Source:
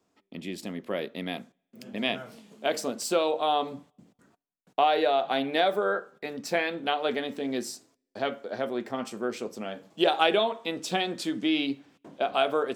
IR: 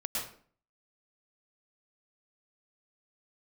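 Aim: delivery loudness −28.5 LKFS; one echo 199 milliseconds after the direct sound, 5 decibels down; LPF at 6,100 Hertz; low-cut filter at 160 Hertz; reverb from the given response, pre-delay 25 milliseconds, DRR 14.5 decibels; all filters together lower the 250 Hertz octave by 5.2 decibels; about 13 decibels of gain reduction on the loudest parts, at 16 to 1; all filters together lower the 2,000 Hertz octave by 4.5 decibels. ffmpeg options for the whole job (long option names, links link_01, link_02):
-filter_complex "[0:a]highpass=160,lowpass=6100,equalizer=frequency=250:width_type=o:gain=-6.5,equalizer=frequency=2000:width_type=o:gain=-6,acompressor=threshold=-33dB:ratio=16,aecho=1:1:199:0.562,asplit=2[link_01][link_02];[1:a]atrim=start_sample=2205,adelay=25[link_03];[link_02][link_03]afir=irnorm=-1:irlink=0,volume=-18.5dB[link_04];[link_01][link_04]amix=inputs=2:normalize=0,volume=9.5dB"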